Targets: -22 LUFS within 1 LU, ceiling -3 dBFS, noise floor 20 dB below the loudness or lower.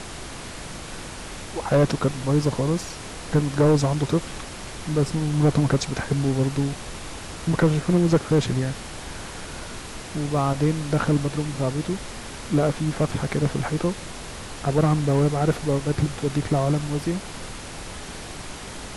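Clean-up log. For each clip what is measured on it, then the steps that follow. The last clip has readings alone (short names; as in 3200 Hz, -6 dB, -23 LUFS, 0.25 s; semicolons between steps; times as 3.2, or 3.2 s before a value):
clipped 0.8%; flat tops at -12.0 dBFS; noise floor -37 dBFS; noise floor target -44 dBFS; loudness -23.5 LUFS; peak -12.0 dBFS; loudness target -22.0 LUFS
-> clip repair -12 dBFS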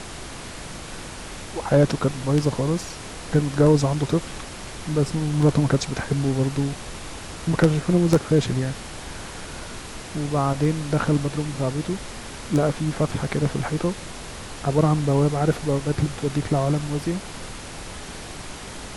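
clipped 0.0%; noise floor -37 dBFS; noise floor target -43 dBFS
-> noise print and reduce 6 dB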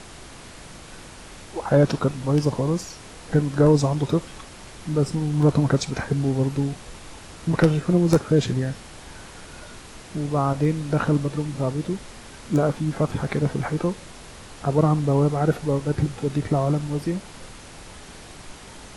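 noise floor -43 dBFS; loudness -23.0 LUFS; peak -3.0 dBFS; loudness target -22.0 LUFS
-> gain +1 dB; limiter -3 dBFS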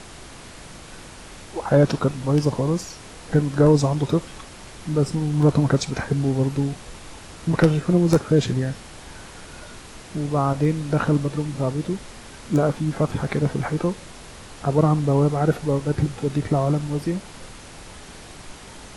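loudness -22.0 LUFS; peak -3.0 dBFS; noise floor -42 dBFS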